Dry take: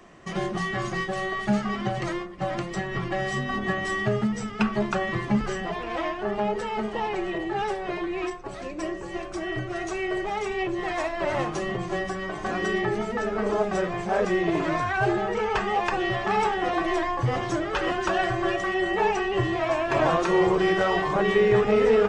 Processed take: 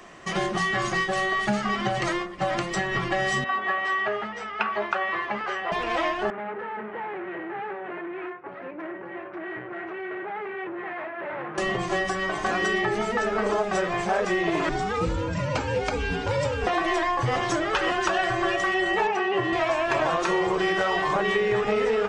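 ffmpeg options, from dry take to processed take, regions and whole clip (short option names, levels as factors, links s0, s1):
-filter_complex "[0:a]asettb=1/sr,asplit=3[s0][s1][s2];[s0]atrim=end=3.444[s3];[s1]atrim=start=3.44:end=5.72,asetpts=PTS-STARTPTS,afade=t=in:d=0.004:c=qsin,afade=t=out:st=2.276:d=0.004:c=qsin,highpass=560,lowpass=2400,aeval=exprs='val(0)+0.000794*(sin(2*PI*60*n/s)+sin(2*PI*2*60*n/s)/2+sin(2*PI*3*60*n/s)/3+sin(2*PI*4*60*n/s)/4+sin(2*PI*5*60*n/s)/5)':c=same,asplit=2[s4][s5];[s5]adelay=15,volume=0.237[s6];[s4][s6]amix=inputs=2:normalize=0,atrim=end_sample=100548[s7];[s2]atrim=start=5.716[s8];[s3][s7]acrossfade=d=0.004:c1=hsin:c2=qsin[s9];[s9][s8]acrossfade=d=0.004:c1=qsin:c2=hsin,asettb=1/sr,asplit=3[s10][s11][s12];[s10]atrim=end=6.304[s13];[s11]atrim=start=6.3:end=11.58,asetpts=PTS-STARTPTS,afade=t=in:d=0.004:c=qsin,afade=t=out:st=5.276:d=0.004:c=qsin,aeval=exprs='(tanh(44.7*val(0)+0.65)-tanh(0.65))/44.7':c=same,highpass=f=110:w=0.5412,highpass=f=110:w=1.3066,equalizer=f=120:t=q:w=4:g=-9,equalizer=f=230:t=q:w=4:g=-3,equalizer=f=690:t=q:w=4:g=-4,equalizer=f=1100:t=q:w=4:g=-4,lowpass=f=2000:w=0.5412,lowpass=f=2000:w=1.3066[s14];[s12]atrim=start=11.576[s15];[s13][s14]acrossfade=d=0.004:c1=hsin:c2=qsin[s16];[s16][s15]acrossfade=d=0.004:c1=qsin:c2=hsin,asettb=1/sr,asplit=3[s17][s18][s19];[s17]atrim=end=14.694[s20];[s18]atrim=start=14.69:end=16.67,asetpts=PTS-STARTPTS,afade=t=in:d=0.004:c=qsin,afade=t=out:st=1.976:d=0.004:c=qsin,equalizer=f=1800:w=0.7:g=-8.5,afreqshift=-300[s21];[s19]atrim=start=16.666[s22];[s20][s21]acrossfade=d=0.004:c1=hsin:c2=qsin[s23];[s23][s22]acrossfade=d=0.004:c1=qsin:c2=hsin,asettb=1/sr,asplit=3[s24][s25][s26];[s24]atrim=end=19.074[s27];[s25]atrim=start=19.07:end=19.53,asetpts=PTS-STARTPTS,afade=t=in:d=0.004:c=qsin,afade=t=out:st=0.456:d=0.004:c=qsin,highpass=160,aemphasis=mode=reproduction:type=75fm[s28];[s26]atrim=start=19.526[s29];[s27][s28]acrossfade=d=0.004:c1=hsin:c2=qsin[s30];[s30][s29]acrossfade=d=0.004:c1=qsin:c2=hsin,lowshelf=f=480:g=-8.5,acompressor=threshold=0.0398:ratio=6,volume=2.37"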